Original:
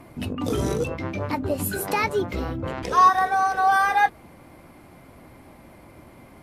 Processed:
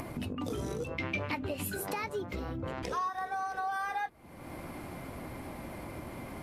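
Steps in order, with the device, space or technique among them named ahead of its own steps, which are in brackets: upward and downward compression (upward compressor, threshold -24 dBFS; compression 5:1, threshold -26 dBFS, peak gain reduction 13.5 dB); 0.98–1.70 s: peaking EQ 2.7 kHz +12.5 dB 1.1 oct; trim -6.5 dB

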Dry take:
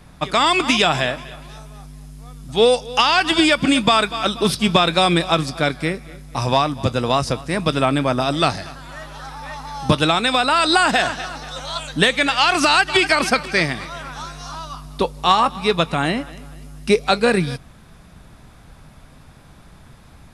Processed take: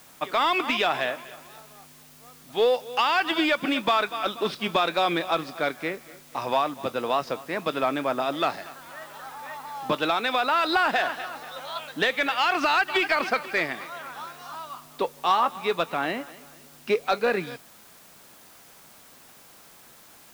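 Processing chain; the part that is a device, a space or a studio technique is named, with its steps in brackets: tape answering machine (band-pass 340–3000 Hz; saturation -7.5 dBFS, distortion -20 dB; wow and flutter 17 cents; white noise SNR 25 dB); trim -4.5 dB

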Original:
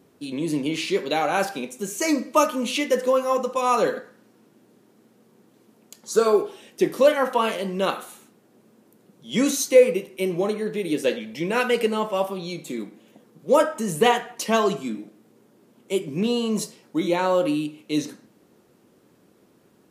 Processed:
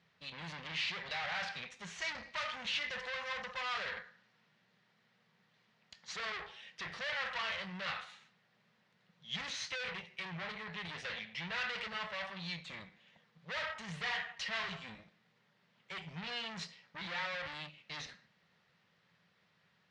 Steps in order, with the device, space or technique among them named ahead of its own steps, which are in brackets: scooped metal amplifier (valve stage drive 32 dB, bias 0.75; cabinet simulation 85–4400 Hz, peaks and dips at 170 Hz +10 dB, 390 Hz -3 dB, 1.9 kHz +7 dB; amplifier tone stack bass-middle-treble 10-0-10); trim +3.5 dB

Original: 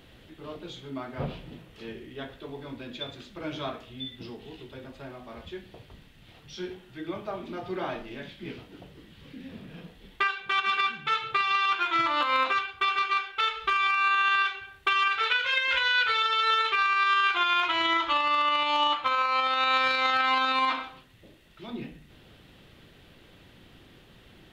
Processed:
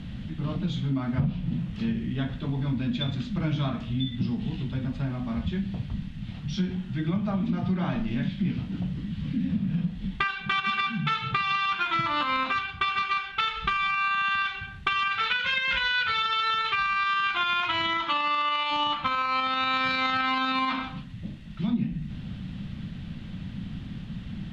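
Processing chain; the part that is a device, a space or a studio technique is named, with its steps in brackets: jukebox (low-pass 6.4 kHz 12 dB/octave; resonant low shelf 280 Hz +11.5 dB, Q 3; compression 5:1, threshold -29 dBFS, peak gain reduction 13.5 dB); 18.03–18.70 s: high-pass 190 Hz -> 600 Hz 12 dB/octave; trim +5.5 dB

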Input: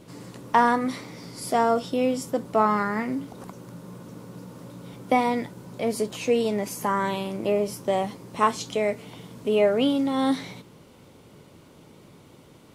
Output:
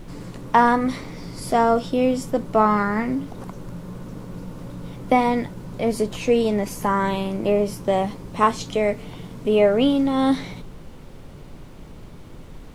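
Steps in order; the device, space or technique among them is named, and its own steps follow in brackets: car interior (peaking EQ 150 Hz +4.5 dB 0.79 oct; treble shelf 4.5 kHz -5 dB; brown noise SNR 17 dB); trim +3.5 dB

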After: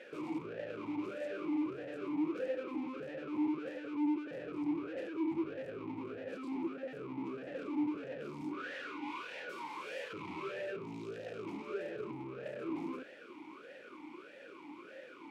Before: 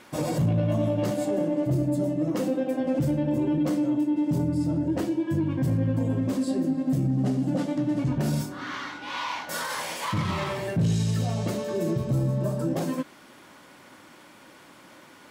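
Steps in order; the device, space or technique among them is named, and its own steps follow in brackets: talk box (valve stage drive 43 dB, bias 0.8; talking filter e-u 1.6 Hz); trim +14.5 dB

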